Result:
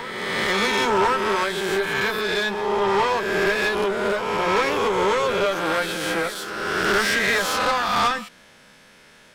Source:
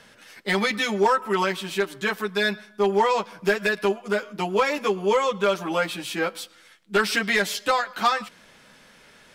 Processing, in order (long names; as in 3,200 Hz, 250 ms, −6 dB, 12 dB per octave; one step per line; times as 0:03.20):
peak hold with a rise ahead of every peak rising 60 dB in 1.70 s
tube saturation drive 16 dB, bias 0.6
on a send: backwards echo 1,064 ms −15 dB
on the sum: level +1.5 dB